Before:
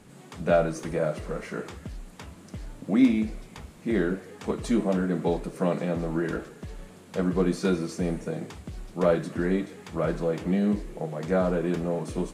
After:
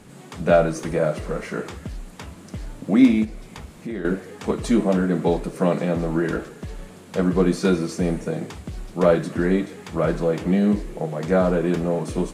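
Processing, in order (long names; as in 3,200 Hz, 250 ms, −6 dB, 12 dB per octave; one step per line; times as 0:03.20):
0:03.24–0:04.05: downward compressor 2.5 to 1, threshold −38 dBFS, peak gain reduction 12 dB
level +5.5 dB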